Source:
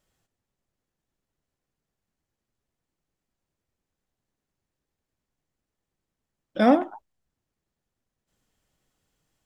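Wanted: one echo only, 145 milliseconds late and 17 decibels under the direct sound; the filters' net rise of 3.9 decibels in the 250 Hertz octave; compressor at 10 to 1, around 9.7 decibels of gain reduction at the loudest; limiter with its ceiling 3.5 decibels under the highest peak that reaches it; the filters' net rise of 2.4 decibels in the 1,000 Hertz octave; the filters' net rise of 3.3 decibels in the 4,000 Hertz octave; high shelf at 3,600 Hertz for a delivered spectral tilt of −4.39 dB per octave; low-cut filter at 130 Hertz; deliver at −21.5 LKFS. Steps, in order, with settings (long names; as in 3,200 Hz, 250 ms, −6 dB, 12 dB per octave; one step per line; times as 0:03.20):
high-pass filter 130 Hz
parametric band 250 Hz +4.5 dB
parametric band 1,000 Hz +3.5 dB
high-shelf EQ 3,600 Hz −7 dB
parametric band 4,000 Hz +8 dB
downward compressor 10 to 1, threshold −18 dBFS
brickwall limiter −13 dBFS
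single-tap delay 145 ms −17 dB
level +7.5 dB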